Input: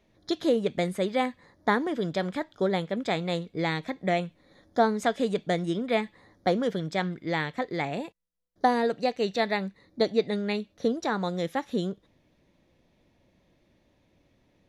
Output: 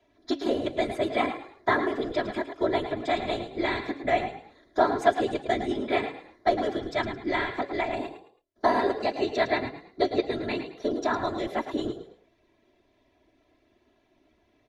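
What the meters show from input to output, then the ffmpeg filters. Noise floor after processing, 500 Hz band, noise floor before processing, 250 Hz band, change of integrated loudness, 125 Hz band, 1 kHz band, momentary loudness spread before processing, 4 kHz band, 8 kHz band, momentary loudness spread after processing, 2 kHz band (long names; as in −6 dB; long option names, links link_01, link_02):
−68 dBFS, +0.5 dB, −67 dBFS, −1.5 dB, +0.5 dB, −7.0 dB, +2.0 dB, 7 LU, −0.5 dB, can't be measured, 7 LU, +1.5 dB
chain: -filter_complex "[0:a]lowshelf=frequency=180:gain=-9.5,afftfilt=real='hypot(re,im)*cos(2*PI*random(0))':imag='hypot(re,im)*sin(2*PI*random(1))':win_size=512:overlap=0.75,acrossover=split=340[link_01][link_02];[link_01]alimiter=level_in=10dB:limit=-24dB:level=0:latency=1:release=79,volume=-10dB[link_03];[link_03][link_02]amix=inputs=2:normalize=0,acrossover=split=180|3000[link_04][link_05][link_06];[link_04]acompressor=threshold=-34dB:ratio=5[link_07];[link_07][link_05][link_06]amix=inputs=3:normalize=0,aemphasis=mode=reproduction:type=cd,aecho=1:1:3:0.81,bandreject=frequency=278.5:width_type=h:width=4,bandreject=frequency=557:width_type=h:width=4,acontrast=51,asplit=4[link_08][link_09][link_10][link_11];[link_09]adelay=108,afreqshift=38,volume=-10dB[link_12];[link_10]adelay=216,afreqshift=76,volume=-20.5dB[link_13];[link_11]adelay=324,afreqshift=114,volume=-30.9dB[link_14];[link_08][link_12][link_13][link_14]amix=inputs=4:normalize=0"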